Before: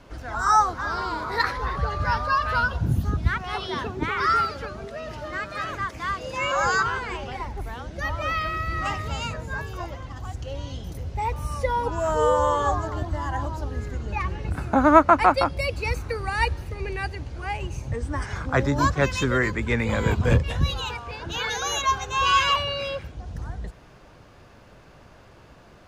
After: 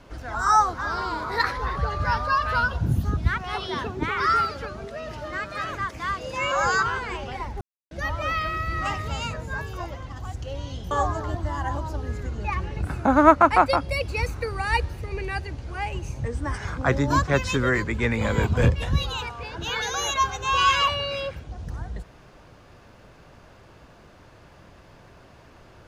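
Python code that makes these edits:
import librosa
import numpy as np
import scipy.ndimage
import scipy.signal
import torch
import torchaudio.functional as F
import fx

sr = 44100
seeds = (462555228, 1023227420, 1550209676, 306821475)

y = fx.edit(x, sr, fx.silence(start_s=7.61, length_s=0.3),
    fx.cut(start_s=10.91, length_s=1.68), tone=tone)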